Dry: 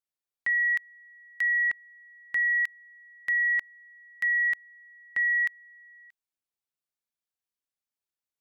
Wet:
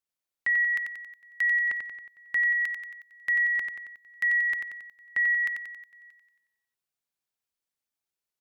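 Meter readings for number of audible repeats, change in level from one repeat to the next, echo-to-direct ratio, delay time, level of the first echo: 6, -5.5 dB, -4.0 dB, 91 ms, -5.5 dB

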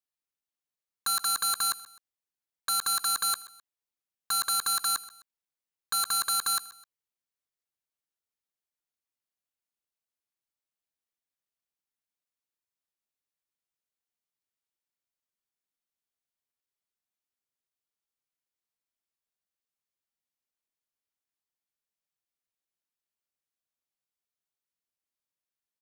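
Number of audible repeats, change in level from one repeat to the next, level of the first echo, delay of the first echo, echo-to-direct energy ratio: 2, -8.0 dB, -19.0 dB, 0.129 s, -18.5 dB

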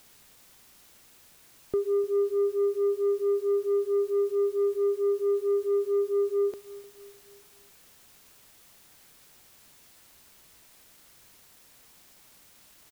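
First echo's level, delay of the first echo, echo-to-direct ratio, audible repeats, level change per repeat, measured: -19.0 dB, 0.302 s, -18.0 dB, 3, -6.5 dB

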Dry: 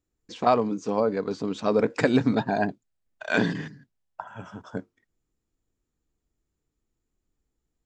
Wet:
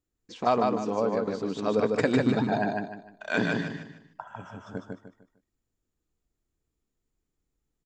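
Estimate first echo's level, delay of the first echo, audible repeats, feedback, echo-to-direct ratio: -3.0 dB, 0.151 s, 4, 32%, -2.5 dB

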